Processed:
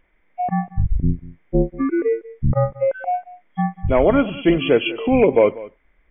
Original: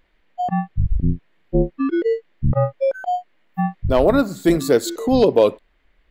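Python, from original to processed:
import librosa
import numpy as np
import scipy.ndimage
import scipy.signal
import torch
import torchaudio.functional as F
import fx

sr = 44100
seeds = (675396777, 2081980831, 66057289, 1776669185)

y = fx.freq_compress(x, sr, knee_hz=2000.0, ratio=4.0)
y = y + 10.0 ** (-19.0 / 20.0) * np.pad(y, (int(192 * sr / 1000.0), 0))[:len(y)]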